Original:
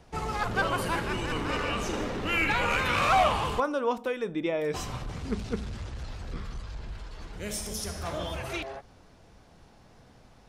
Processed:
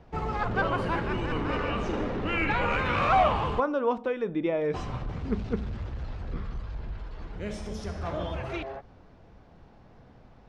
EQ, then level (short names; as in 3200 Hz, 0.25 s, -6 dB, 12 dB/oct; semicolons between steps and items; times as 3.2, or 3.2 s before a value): tape spacing loss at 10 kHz 26 dB; +3.0 dB